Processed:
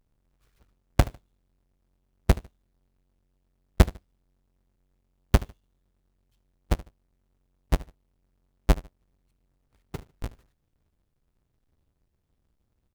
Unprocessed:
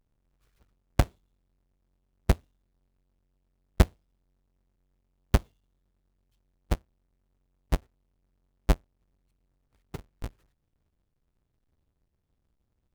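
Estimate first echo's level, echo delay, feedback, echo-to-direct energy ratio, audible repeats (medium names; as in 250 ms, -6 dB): -19.5 dB, 75 ms, 26%, -19.0 dB, 2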